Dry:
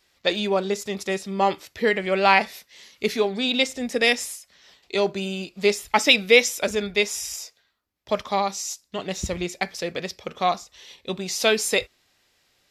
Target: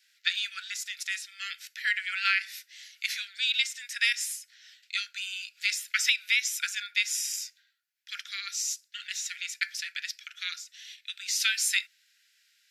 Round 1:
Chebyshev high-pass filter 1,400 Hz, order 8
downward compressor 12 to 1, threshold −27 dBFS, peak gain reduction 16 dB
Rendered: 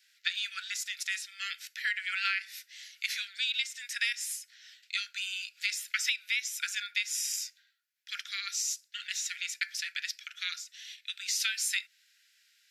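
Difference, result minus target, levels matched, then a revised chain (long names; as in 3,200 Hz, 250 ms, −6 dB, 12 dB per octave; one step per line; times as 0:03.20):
downward compressor: peak gain reduction +6 dB
Chebyshev high-pass filter 1,400 Hz, order 8
downward compressor 12 to 1, threshold −20.5 dBFS, peak gain reduction 10.5 dB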